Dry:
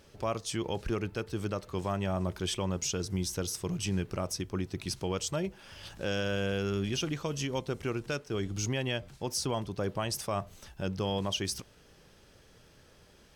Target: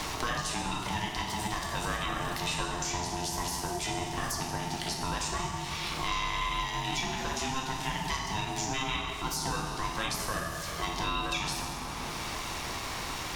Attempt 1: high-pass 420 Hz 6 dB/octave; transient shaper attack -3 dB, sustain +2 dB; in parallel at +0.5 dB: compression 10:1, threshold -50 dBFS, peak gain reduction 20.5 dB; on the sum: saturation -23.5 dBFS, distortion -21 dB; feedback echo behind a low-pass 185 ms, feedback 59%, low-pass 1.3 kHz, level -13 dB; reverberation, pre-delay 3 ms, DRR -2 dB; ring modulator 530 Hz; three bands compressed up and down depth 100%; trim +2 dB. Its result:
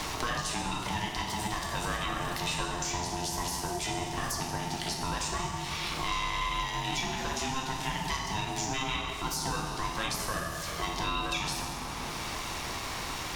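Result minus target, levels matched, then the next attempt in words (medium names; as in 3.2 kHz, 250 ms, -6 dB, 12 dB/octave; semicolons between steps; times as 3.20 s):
saturation: distortion +11 dB; compression: peak gain reduction -6 dB
high-pass 420 Hz 6 dB/octave; transient shaper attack -3 dB, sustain +2 dB; in parallel at +0.5 dB: compression 10:1, threshold -56.5 dBFS, peak gain reduction 26 dB; on the sum: saturation -17.5 dBFS, distortion -32 dB; feedback echo behind a low-pass 185 ms, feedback 59%, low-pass 1.3 kHz, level -13 dB; reverberation, pre-delay 3 ms, DRR -2 dB; ring modulator 530 Hz; three bands compressed up and down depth 100%; trim +2 dB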